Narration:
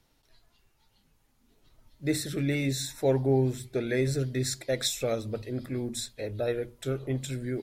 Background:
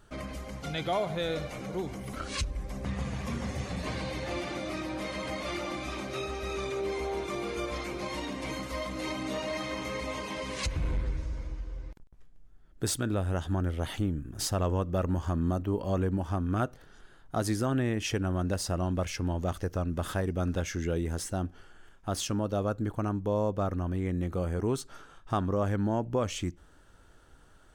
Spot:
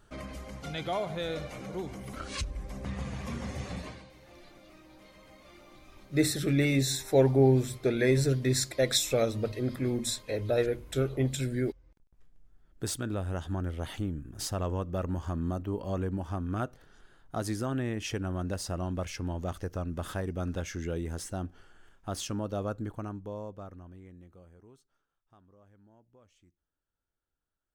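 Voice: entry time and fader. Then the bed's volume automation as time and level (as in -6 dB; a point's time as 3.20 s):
4.10 s, +2.5 dB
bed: 3.77 s -2.5 dB
4.11 s -20 dB
11.83 s -20 dB
12.25 s -3.5 dB
22.75 s -3.5 dB
25.10 s -32 dB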